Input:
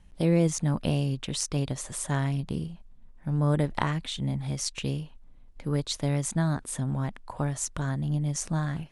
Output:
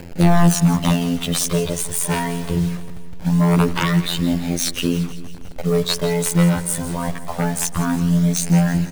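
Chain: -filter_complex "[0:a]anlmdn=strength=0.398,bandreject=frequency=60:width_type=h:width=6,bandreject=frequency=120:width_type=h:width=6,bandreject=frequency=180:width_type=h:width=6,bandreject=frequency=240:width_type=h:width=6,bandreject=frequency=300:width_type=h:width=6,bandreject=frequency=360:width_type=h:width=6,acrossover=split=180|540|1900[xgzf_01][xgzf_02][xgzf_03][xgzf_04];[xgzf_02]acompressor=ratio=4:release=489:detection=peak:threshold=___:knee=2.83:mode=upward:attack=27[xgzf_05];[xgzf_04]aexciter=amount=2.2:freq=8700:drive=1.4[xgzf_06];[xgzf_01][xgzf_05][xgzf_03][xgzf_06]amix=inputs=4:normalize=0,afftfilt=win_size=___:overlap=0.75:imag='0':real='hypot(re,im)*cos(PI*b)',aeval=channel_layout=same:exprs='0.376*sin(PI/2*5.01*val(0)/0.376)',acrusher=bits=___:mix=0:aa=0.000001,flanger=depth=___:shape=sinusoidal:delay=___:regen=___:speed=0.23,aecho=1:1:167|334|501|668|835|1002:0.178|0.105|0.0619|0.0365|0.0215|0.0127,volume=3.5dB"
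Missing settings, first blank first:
-44dB, 2048, 5, 1.7, 0.4, -33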